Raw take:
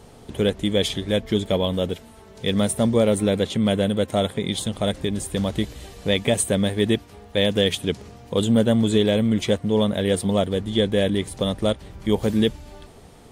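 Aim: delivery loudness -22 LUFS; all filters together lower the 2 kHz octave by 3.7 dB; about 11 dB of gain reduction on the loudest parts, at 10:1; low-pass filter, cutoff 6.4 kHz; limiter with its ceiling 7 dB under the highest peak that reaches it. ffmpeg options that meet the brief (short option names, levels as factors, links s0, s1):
-af "lowpass=6400,equalizer=f=2000:t=o:g=-4.5,acompressor=threshold=0.0501:ratio=10,volume=3.55,alimiter=limit=0.316:level=0:latency=1"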